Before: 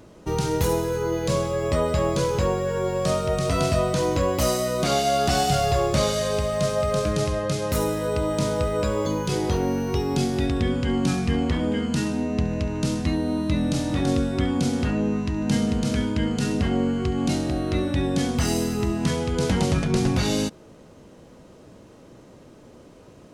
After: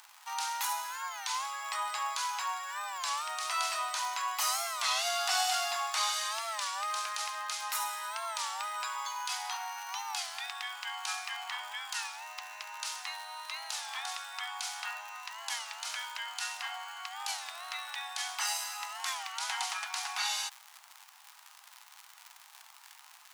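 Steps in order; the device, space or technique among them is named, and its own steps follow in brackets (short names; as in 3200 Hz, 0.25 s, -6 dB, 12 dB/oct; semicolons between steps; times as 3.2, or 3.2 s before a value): warped LP (record warp 33 1/3 rpm, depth 160 cents; crackle 110/s -32 dBFS; pink noise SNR 32 dB); steep high-pass 780 Hz 72 dB/oct; gain -2.5 dB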